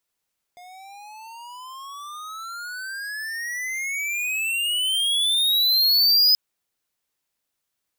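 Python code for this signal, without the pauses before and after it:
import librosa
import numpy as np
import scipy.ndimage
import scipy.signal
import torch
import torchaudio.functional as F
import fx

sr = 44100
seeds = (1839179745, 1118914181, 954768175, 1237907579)

y = fx.riser_tone(sr, length_s=5.78, level_db=-15.0, wave='square', hz=708.0, rise_st=34.0, swell_db=29)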